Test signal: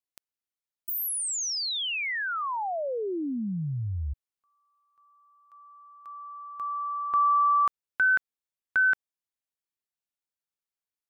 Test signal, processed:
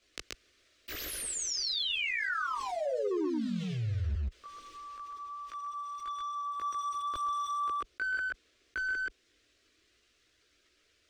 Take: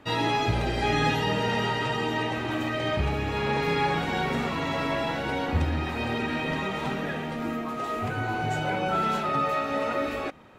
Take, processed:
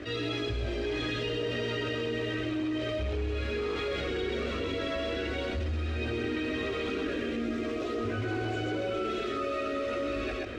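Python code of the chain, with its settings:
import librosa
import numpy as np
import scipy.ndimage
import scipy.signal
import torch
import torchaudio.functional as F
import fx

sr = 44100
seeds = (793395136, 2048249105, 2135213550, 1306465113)

y = scipy.signal.sosfilt(scipy.signal.butter(2, 44.0, 'highpass', fs=sr, output='sos'), x)
y = fx.dynamic_eq(y, sr, hz=1900.0, q=3.1, threshold_db=-47.0, ratio=6.0, max_db=-4)
y = fx.rider(y, sr, range_db=5, speed_s=2.0)
y = fx.quant_float(y, sr, bits=2)
y = fx.chorus_voices(y, sr, voices=6, hz=0.5, base_ms=18, depth_ms=1.7, mix_pct=60)
y = fx.fixed_phaser(y, sr, hz=360.0, stages=4)
y = np.clip(y, -10.0 ** (-27.0 / 20.0), 10.0 ** (-27.0 / 20.0))
y = fx.air_absorb(y, sr, metres=140.0)
y = y + 10.0 ** (-3.0 / 20.0) * np.pad(y, (int(129 * sr / 1000.0), 0))[:len(y)]
y = fx.env_flatten(y, sr, amount_pct=70)
y = y * 10.0 ** (-3.5 / 20.0)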